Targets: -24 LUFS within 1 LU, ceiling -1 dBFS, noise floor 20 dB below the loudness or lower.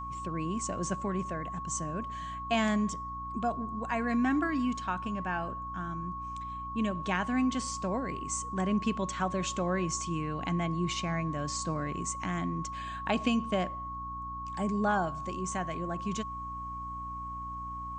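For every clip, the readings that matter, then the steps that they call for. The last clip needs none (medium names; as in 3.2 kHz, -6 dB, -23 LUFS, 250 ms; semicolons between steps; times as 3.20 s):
hum 60 Hz; highest harmonic 300 Hz; hum level -42 dBFS; steady tone 1.1 kHz; tone level -37 dBFS; loudness -33.0 LUFS; peak level -14.5 dBFS; loudness target -24.0 LUFS
-> de-hum 60 Hz, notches 5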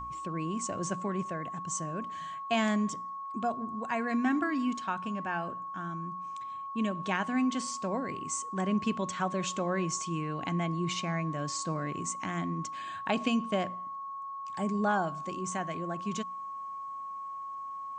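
hum not found; steady tone 1.1 kHz; tone level -37 dBFS
-> band-stop 1.1 kHz, Q 30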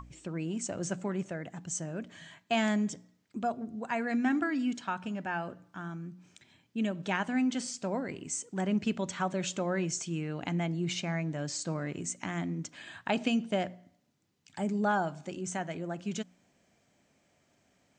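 steady tone not found; loudness -33.5 LUFS; peak level -15.5 dBFS; loudness target -24.0 LUFS
-> trim +9.5 dB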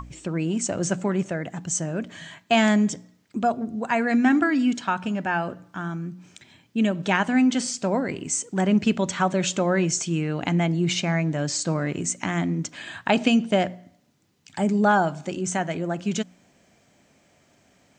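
loudness -24.0 LUFS; peak level -6.0 dBFS; noise floor -61 dBFS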